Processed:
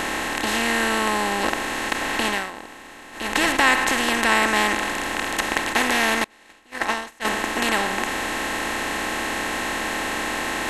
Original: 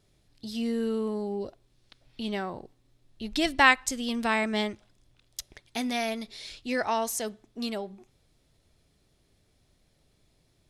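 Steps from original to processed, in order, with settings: per-bin compression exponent 0.2; 2.25–3.38 dip -15 dB, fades 0.26 s; 6.24–7.25 gate -15 dBFS, range -30 dB; gain -2 dB

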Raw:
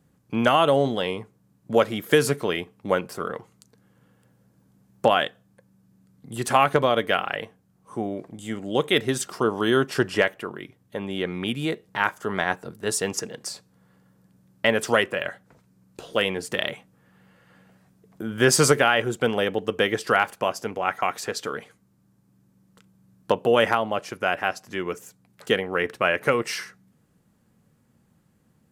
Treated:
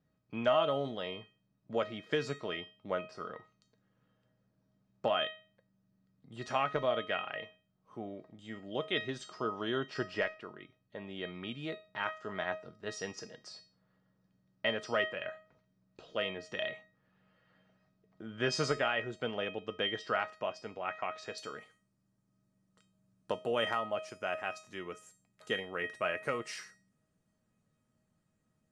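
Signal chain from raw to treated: LPF 5300 Hz 24 dB/oct, from 21.38 s 9600 Hz; resonator 630 Hz, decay 0.36 s, mix 90%; gain +4.5 dB

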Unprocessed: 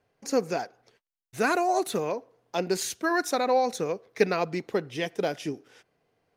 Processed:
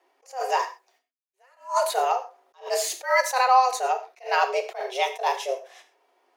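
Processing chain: 0.61–1.63 G.711 law mismatch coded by A; de-esser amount 60%; frequency shift +260 Hz; non-linear reverb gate 0.15 s falling, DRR 5.5 dB; attack slew limiter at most 210 dB/s; gain +5 dB

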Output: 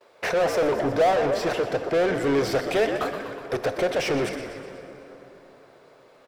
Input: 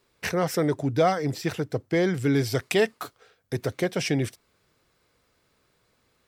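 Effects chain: frequency-shifting echo 0.123 s, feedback 58%, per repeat -80 Hz, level -15 dB; de-esser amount 55%; bell 600 Hz +14 dB 1.2 oct; overdrive pedal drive 25 dB, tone 2600 Hz, clips at -9 dBFS; plate-style reverb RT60 4.2 s, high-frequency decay 0.55×, DRR 9.5 dB; gate -53 dBFS, range -25 dB; gain -8 dB

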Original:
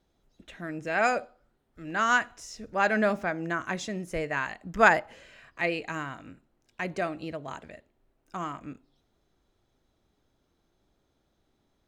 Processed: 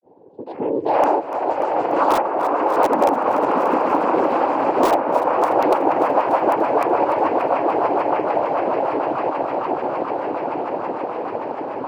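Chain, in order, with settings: Wiener smoothing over 41 samples; low shelf 280 Hz -5 dB; swelling echo 0.149 s, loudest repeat 8, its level -10 dB; grains 0.196 s, grains 12/s, spray 18 ms; noise vocoder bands 8; LPF 2200 Hz 6 dB/oct; wrapped overs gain 18 dB; band shelf 550 Hz +16 dB 2.4 oct; on a send: thinning echo 0.292 s, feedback 64%, level -17.5 dB; on the sum: three-band squash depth 70%

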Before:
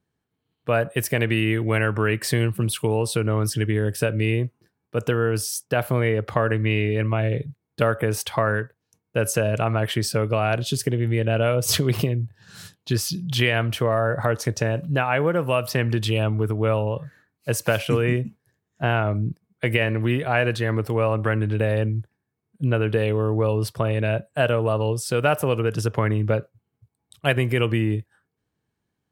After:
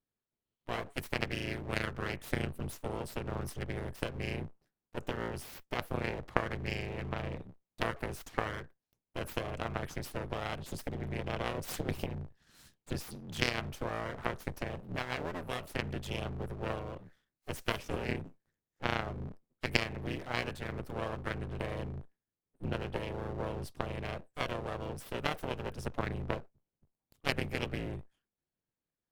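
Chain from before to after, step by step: octaver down 2 oct, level +2 dB; full-wave rectifier; added harmonics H 3 -12 dB, 4 -26 dB, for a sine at -2.5 dBFS; gain -2 dB

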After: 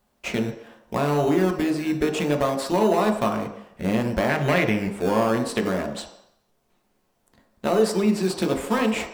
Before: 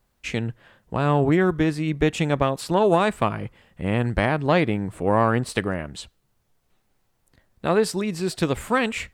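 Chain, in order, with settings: in parallel at -6 dB: decimation with a swept rate 18×, swing 60% 0.62 Hz; on the sum: low shelf 190 Hz -10.5 dB; soft clip -11.5 dBFS, distortion -16 dB; compressor, threshold -20 dBFS, peak gain reduction 5 dB; 4.29–4.88 graphic EQ 125/250/1000/2000 Hz +8/-4/-4/+12 dB; on a send at -3 dB: reverb RT60 0.75 s, pre-delay 3 ms

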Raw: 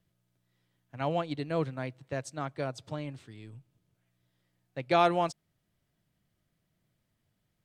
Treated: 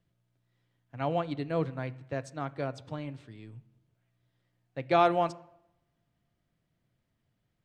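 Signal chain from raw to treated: LPF 3600 Hz 6 dB/oct; on a send: reverb RT60 0.85 s, pre-delay 3 ms, DRR 14 dB

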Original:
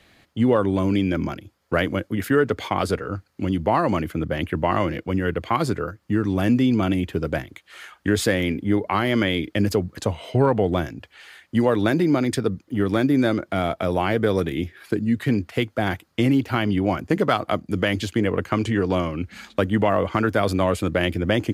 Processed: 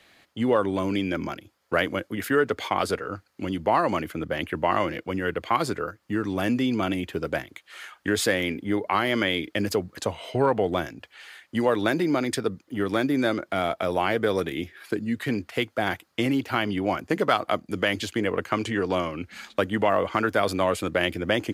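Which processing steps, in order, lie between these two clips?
low shelf 240 Hz -12 dB

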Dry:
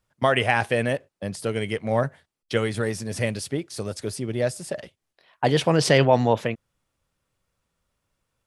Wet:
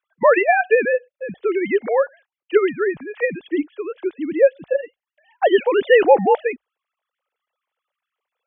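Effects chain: sine-wave speech; frequency shift -49 Hz; gain +5.5 dB

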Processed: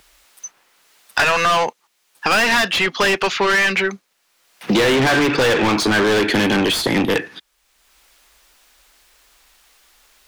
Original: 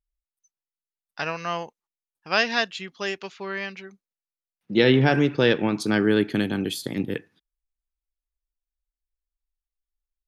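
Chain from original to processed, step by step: overdrive pedal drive 35 dB, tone 4500 Hz, clips at -5 dBFS; three-band squash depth 70%; gain -3 dB

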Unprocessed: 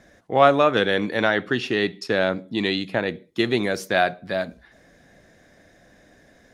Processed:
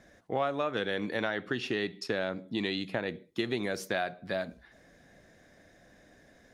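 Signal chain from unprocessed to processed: compressor 4:1, threshold -23 dBFS, peak gain reduction 12 dB; gain -5 dB

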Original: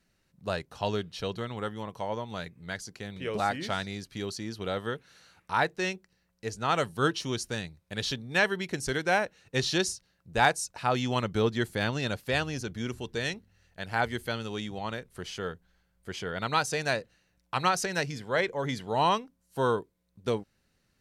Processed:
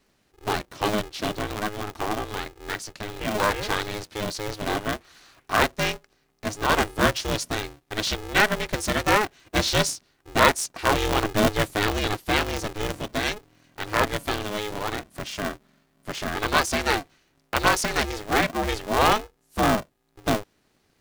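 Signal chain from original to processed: polarity switched at an audio rate 210 Hz; gain +5.5 dB

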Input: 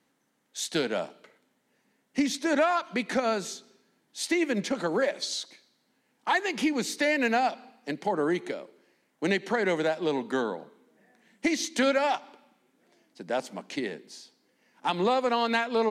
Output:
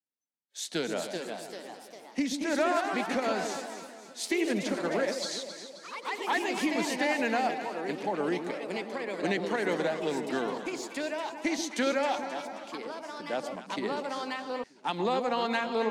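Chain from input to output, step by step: echo with dull and thin repeats by turns 0.133 s, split 890 Hz, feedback 71%, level -7 dB; echoes that change speed 0.466 s, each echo +2 st, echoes 3, each echo -6 dB; spectral noise reduction 29 dB; gain -4 dB

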